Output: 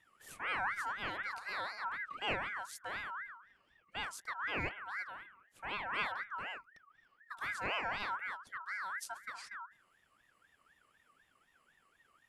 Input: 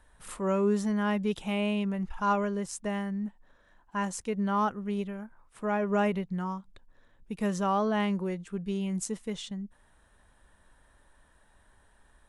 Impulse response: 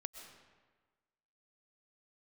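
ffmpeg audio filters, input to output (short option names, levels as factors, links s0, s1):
-af "bandreject=f=208.5:t=h:w=4,bandreject=f=417:t=h:w=4,bandreject=f=625.5:t=h:w=4,bandreject=f=834:t=h:w=4,bandreject=f=1042.5:t=h:w=4,bandreject=f=1251:t=h:w=4,bandreject=f=1459.5:t=h:w=4,bandreject=f=1668:t=h:w=4,bandreject=f=1876.5:t=h:w=4,aeval=exprs='val(0)*sin(2*PI*1500*n/s+1500*0.25/4*sin(2*PI*4*n/s))':c=same,volume=0.447"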